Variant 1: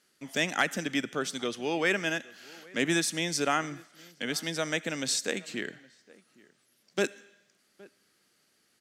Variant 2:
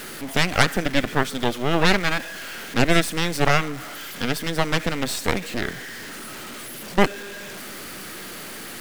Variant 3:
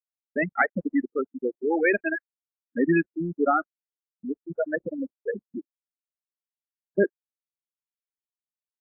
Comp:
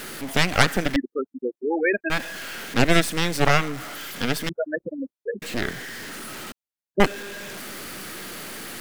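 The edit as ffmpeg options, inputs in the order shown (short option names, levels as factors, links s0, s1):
-filter_complex "[2:a]asplit=3[s0][s1][s2];[1:a]asplit=4[s3][s4][s5][s6];[s3]atrim=end=0.962[s7];[s0]atrim=start=0.958:end=2.102[s8];[s4]atrim=start=2.098:end=4.492[s9];[s1]atrim=start=4.488:end=5.422[s10];[s5]atrim=start=5.418:end=6.522[s11];[s2]atrim=start=6.518:end=7.002[s12];[s6]atrim=start=6.998[s13];[s7][s8]acrossfade=d=0.004:c1=hsin:c2=hsin[s14];[s14][s9]acrossfade=d=0.004:c1=hsin:c2=hsin[s15];[s15][s10]acrossfade=d=0.004:c1=hsin:c2=hsin[s16];[s16][s11]acrossfade=d=0.004:c1=hsin:c2=hsin[s17];[s17][s12]acrossfade=d=0.004:c1=hsin:c2=hsin[s18];[s18][s13]acrossfade=d=0.004:c1=hsin:c2=hsin"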